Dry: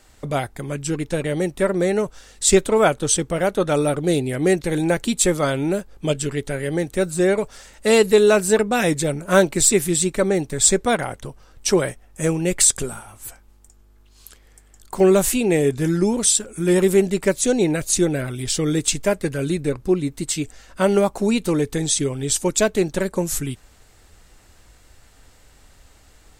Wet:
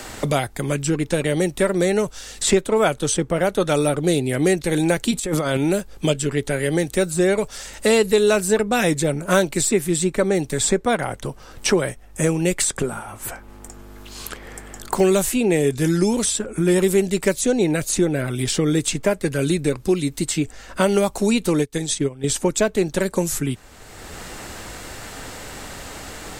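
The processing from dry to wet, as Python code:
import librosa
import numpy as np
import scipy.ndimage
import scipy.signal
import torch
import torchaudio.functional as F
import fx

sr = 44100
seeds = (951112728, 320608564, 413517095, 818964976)

y = fx.over_compress(x, sr, threshold_db=-25.0, ratio=-1.0, at=(5.11, 5.57))
y = fx.upward_expand(y, sr, threshold_db=-31.0, expansion=2.5, at=(21.62, 22.24))
y = fx.band_squash(y, sr, depth_pct=70)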